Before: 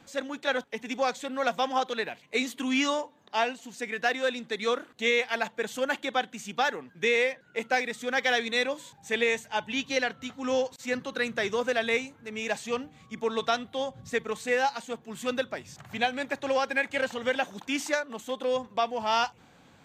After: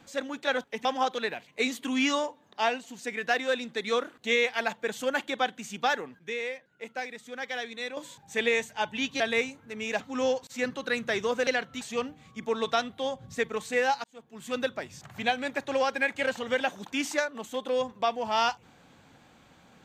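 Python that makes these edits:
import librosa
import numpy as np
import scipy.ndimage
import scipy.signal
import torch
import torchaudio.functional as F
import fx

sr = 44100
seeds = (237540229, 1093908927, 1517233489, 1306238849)

y = fx.edit(x, sr, fx.cut(start_s=0.85, length_s=0.75),
    fx.clip_gain(start_s=6.94, length_s=1.78, db=-9.0),
    fx.swap(start_s=9.95, length_s=0.34, other_s=11.76, other_length_s=0.8),
    fx.fade_in_span(start_s=14.79, length_s=0.61), tone=tone)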